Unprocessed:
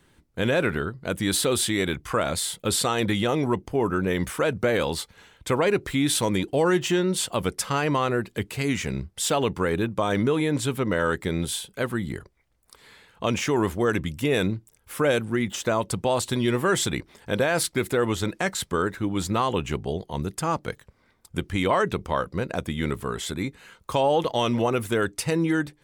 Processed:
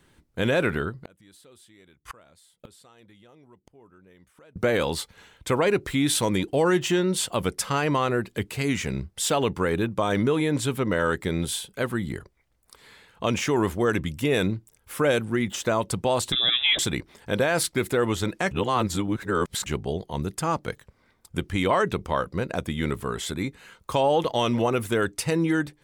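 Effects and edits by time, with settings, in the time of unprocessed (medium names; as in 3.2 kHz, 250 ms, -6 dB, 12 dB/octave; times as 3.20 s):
0.95–4.56 s: inverted gate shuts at -24 dBFS, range -30 dB
16.32–16.79 s: frequency inversion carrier 3.7 kHz
18.51–19.66 s: reverse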